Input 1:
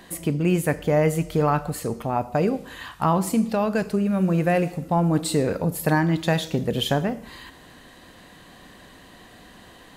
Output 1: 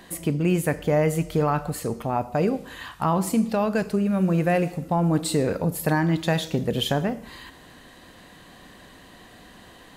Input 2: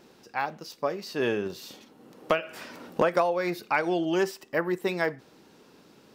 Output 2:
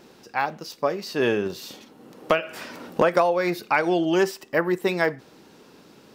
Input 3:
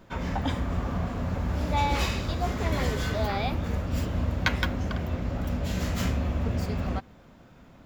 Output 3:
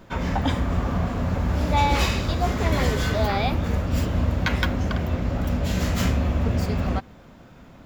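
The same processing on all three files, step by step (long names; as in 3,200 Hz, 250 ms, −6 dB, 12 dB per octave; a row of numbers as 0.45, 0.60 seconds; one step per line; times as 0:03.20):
boost into a limiter +11 dB
loudness normalisation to −24 LKFS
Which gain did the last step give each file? −11.5, −6.0, −6.0 decibels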